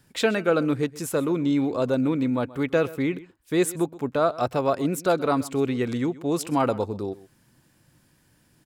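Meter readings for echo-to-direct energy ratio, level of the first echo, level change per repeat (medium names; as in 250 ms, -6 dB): -19.0 dB, -19.0 dB, no regular repeats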